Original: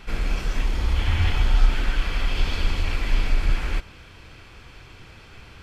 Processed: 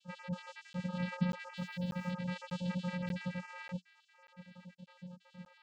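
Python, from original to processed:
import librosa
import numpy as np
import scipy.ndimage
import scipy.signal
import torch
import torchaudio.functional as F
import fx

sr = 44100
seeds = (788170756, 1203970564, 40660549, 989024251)

y = fx.spec_dropout(x, sr, seeds[0], share_pct=62)
y = y + 0.93 * np.pad(y, (int(6.2 * sr / 1000.0), 0))[:len(y)]
y = fx.vocoder(y, sr, bands=8, carrier='square', carrier_hz=179.0)
y = fx.quant_dither(y, sr, seeds[1], bits=12, dither='triangular', at=(1.57, 2.11))
y = fx.buffer_crackle(y, sr, first_s=0.73, period_s=0.59, block=512, kind='zero')
y = y * 10.0 ** (-3.5 / 20.0)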